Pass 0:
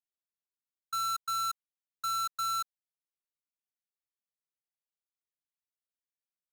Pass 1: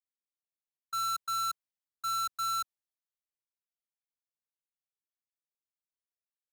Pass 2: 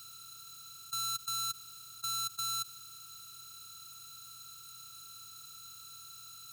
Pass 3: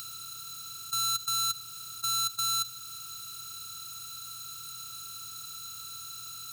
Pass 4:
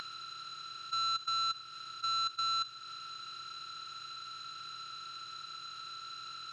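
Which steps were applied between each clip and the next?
three bands expanded up and down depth 40%
spectral levelling over time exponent 0.2; high-order bell 980 Hz -12.5 dB 2.6 oct; trim +2 dB
reverberation RT60 0.75 s, pre-delay 3 ms, DRR 14.5 dB; in parallel at -0.5 dB: upward compressor, threshold -39 dBFS
cabinet simulation 220–4300 Hz, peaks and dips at 290 Hz -8 dB, 1.7 kHz +8 dB, 3.6 kHz -3 dB; upward compressor, threshold -40 dBFS; loudspeaker Doppler distortion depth 0.12 ms

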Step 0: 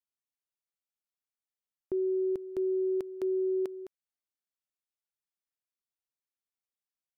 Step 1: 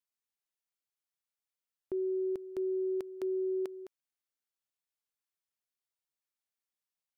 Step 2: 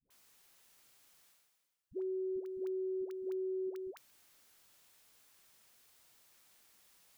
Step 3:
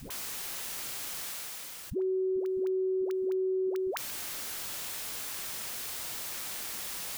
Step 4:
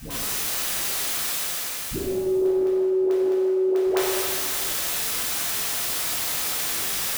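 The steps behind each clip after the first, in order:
bass shelf 480 Hz -5.5 dB
peak limiter -36.5 dBFS, peak gain reduction 8.5 dB; reverse; upward compressor, threshold -49 dBFS; reverse; phase dispersion highs, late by 105 ms, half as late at 450 Hz; trim +2.5 dB
level flattener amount 70%; trim +7.5 dB
pitch-shifted reverb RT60 1.5 s, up +7 st, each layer -8 dB, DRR -8.5 dB; trim +2.5 dB

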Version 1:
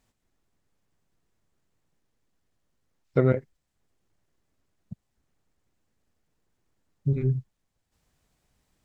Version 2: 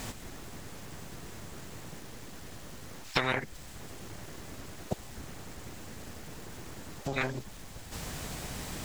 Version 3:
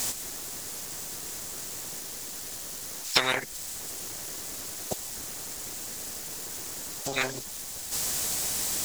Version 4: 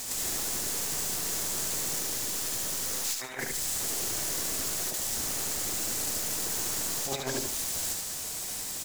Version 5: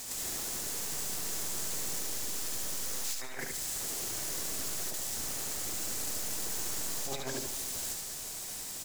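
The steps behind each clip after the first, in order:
compression 6:1, threshold -30 dBFS, peak gain reduction 14 dB; spectrum-flattening compressor 10:1; trim +9 dB
tone controls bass -9 dB, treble +15 dB; trim +2.5 dB
compressor with a negative ratio -34 dBFS, ratio -0.5; on a send: feedback delay 73 ms, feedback 28%, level -4.5 dB; on the sum: trim +2.5 dB
algorithmic reverb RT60 3.7 s, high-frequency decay 0.95×, pre-delay 100 ms, DRR 15 dB; trim -5 dB

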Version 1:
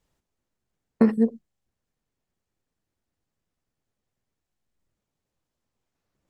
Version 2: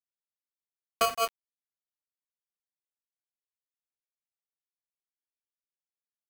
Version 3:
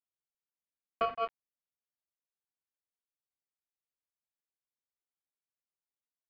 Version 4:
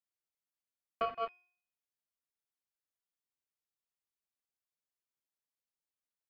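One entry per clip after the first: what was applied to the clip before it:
small samples zeroed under -30.5 dBFS; polarity switched at an audio rate 910 Hz; trim -8.5 dB
Gaussian low-pass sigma 3.3 samples; trim -3.5 dB
de-hum 357.3 Hz, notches 31; trim -3 dB

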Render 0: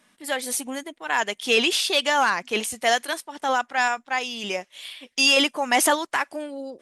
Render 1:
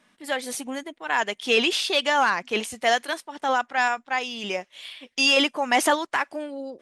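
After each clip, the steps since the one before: treble shelf 8.2 kHz -12 dB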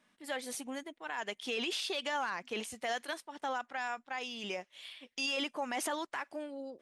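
peak limiter -17.5 dBFS, peak gain reduction 9 dB; trim -9 dB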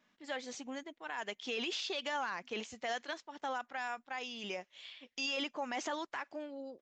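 resampled via 16 kHz; trim -2 dB

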